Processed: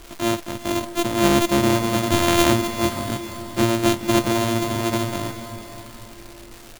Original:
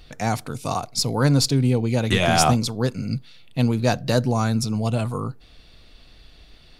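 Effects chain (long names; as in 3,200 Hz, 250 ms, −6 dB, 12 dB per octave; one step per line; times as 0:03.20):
samples sorted by size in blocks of 128 samples
comb filter 3.2 ms, depth 44%
bit reduction 8 bits
on a send: feedback delay with all-pass diffusion 489 ms, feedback 43%, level −11.5 dB
on the sum: surface crackle 450 per second −31 dBFS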